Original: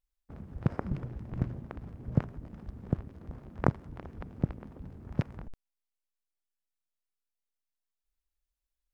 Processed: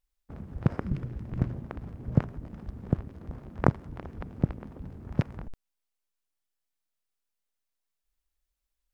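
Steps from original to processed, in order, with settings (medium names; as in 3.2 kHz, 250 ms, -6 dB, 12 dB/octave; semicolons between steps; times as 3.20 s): 0.77–1.38 s: dynamic bell 780 Hz, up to -7 dB, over -54 dBFS, Q 1; trim +3.5 dB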